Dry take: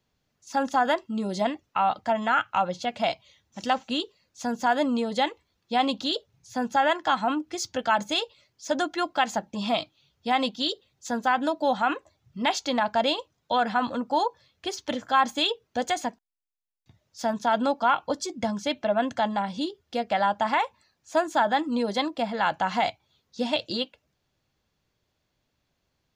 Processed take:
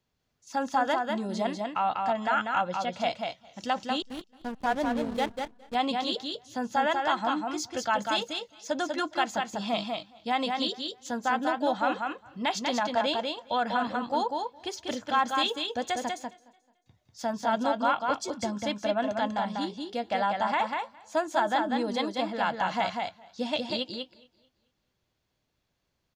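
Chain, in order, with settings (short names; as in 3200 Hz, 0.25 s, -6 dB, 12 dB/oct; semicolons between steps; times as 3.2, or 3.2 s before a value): echo 0.194 s -4 dB; 4.02–5.75 backlash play -23.5 dBFS; warbling echo 0.219 s, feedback 33%, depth 67 cents, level -22 dB; gain -4 dB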